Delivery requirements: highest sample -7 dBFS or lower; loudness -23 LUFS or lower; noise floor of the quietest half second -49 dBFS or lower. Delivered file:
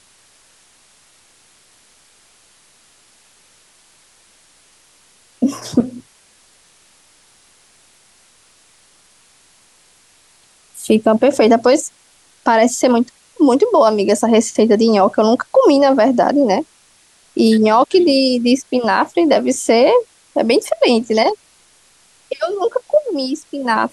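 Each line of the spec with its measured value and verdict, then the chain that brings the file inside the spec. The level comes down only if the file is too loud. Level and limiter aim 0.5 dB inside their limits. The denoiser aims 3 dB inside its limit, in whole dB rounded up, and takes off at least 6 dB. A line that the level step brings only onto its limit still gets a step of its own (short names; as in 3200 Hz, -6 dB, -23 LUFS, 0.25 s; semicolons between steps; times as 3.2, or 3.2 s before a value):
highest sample -2.5 dBFS: fail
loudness -14.5 LUFS: fail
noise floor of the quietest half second -52 dBFS: OK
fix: gain -9 dB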